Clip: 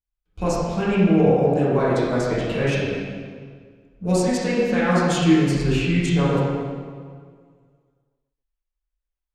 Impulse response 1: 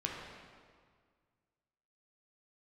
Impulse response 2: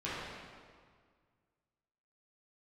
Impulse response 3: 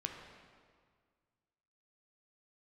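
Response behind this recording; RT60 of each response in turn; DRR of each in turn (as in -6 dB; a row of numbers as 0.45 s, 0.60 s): 2; 1.8 s, 1.8 s, 1.8 s; -2.0 dB, -11.0 dB, 2.0 dB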